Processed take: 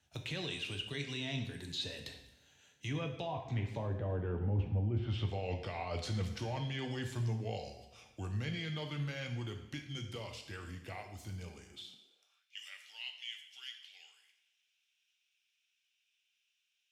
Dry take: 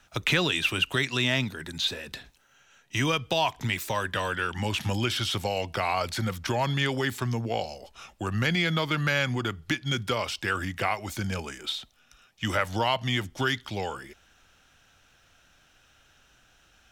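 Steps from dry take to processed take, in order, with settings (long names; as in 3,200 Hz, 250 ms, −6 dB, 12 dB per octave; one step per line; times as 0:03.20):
source passing by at 0:04.29, 12 m/s, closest 1.8 metres
treble cut that deepens with the level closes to 610 Hz, closed at −36 dBFS
reversed playback
downward compressor 12 to 1, threshold −51 dBFS, peak gain reduction 21 dB
reversed playback
parametric band 1,300 Hz −9 dB 1 octave
coupled-rooms reverb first 0.72 s, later 2 s, from −17 dB, DRR 3.5 dB
high-pass filter sweep 74 Hz → 2,600 Hz, 0:11.74–0:12.56
level +16 dB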